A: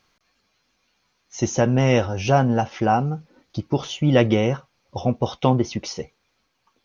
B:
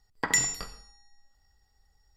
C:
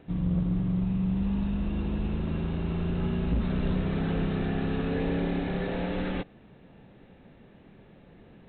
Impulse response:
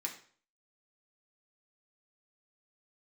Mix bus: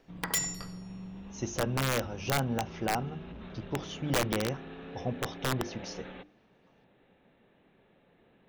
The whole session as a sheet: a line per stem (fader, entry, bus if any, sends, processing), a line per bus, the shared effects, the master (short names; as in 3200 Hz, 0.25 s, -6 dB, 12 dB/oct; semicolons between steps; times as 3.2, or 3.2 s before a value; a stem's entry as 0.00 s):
-11.5 dB, 0.00 s, no send, dry
-5.5 dB, 0.00 s, no send, dry
-6.5 dB, 0.00 s, no send, low shelf 210 Hz -11.5 dB; limiter -30 dBFS, peak gain reduction 7 dB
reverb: off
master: notches 50/100/150/200/250/300/350 Hz; wrapped overs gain 20.5 dB